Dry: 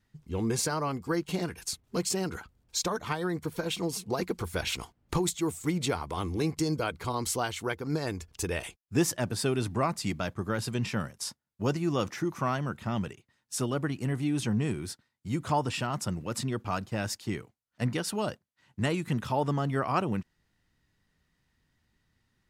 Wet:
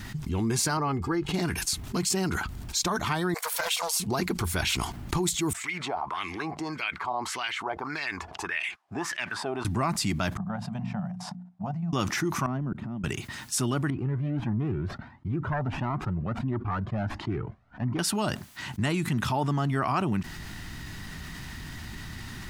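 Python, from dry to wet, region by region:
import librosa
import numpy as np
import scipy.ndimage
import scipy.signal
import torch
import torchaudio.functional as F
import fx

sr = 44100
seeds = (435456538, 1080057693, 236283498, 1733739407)

y = fx.chain(x, sr, fx.lowpass(hz=1700.0, slope=6),
    fx.comb(ms=2.4, depth=0.47), at=(0.77, 1.34))
y = fx.chain(y, sr, fx.brickwall_highpass(low_hz=470.0),
    fx.high_shelf(hz=7600.0, db=7.5),
    fx.doppler_dist(depth_ms=0.14), at=(3.34, 4.0))
y = fx.chain(y, sr, fx.wah_lfo(hz=1.7, low_hz=680.0, high_hz=2400.0, q=4.0),
    fx.notch(hz=1400.0, q=28.0), at=(5.53, 9.65))
y = fx.chain(y, sr, fx.level_steps(step_db=10),
    fx.double_bandpass(hz=360.0, octaves=2.0),
    fx.hum_notches(base_hz=60, count=4), at=(10.37, 11.93))
y = fx.chain(y, sr, fx.bandpass_q(hz=230.0, q=0.91),
    fx.over_compress(threshold_db=-42.0, ratio=-1.0),
    fx.auto_swell(attack_ms=708.0), at=(12.46, 13.04))
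y = fx.chain(y, sr, fx.self_delay(depth_ms=0.3),
    fx.lowpass(hz=1100.0, slope=12),
    fx.comb_cascade(direction='rising', hz=1.5), at=(13.9, 17.99))
y = fx.peak_eq(y, sr, hz=500.0, db=-13.5, octaves=0.35)
y = fx.env_flatten(y, sr, amount_pct=70)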